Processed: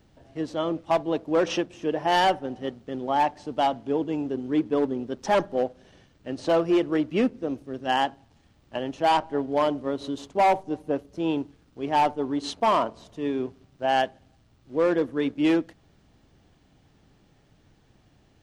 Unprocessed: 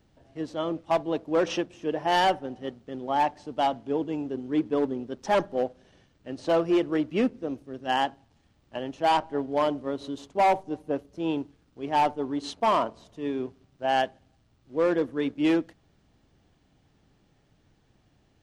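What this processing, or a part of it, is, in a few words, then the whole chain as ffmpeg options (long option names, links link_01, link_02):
parallel compression: -filter_complex "[0:a]asplit=2[link_01][link_02];[link_02]acompressor=threshold=-32dB:ratio=6,volume=-3.5dB[link_03];[link_01][link_03]amix=inputs=2:normalize=0"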